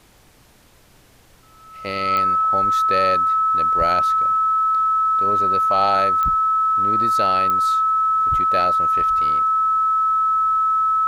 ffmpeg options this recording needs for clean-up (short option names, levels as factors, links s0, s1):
-af "adeclick=t=4,bandreject=f=1300:w=30,agate=range=0.0891:threshold=0.00708"